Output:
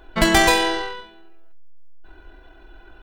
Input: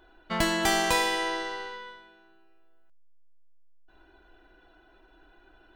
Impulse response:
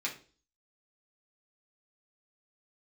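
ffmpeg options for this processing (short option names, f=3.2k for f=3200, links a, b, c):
-filter_complex "[0:a]lowshelf=f=110:g=9.5,atempo=1.9,asplit=2[a][b];[1:a]atrim=start_sample=2205[c];[b][c]afir=irnorm=-1:irlink=0,volume=-10.5dB[d];[a][d]amix=inputs=2:normalize=0,volume=7.5dB"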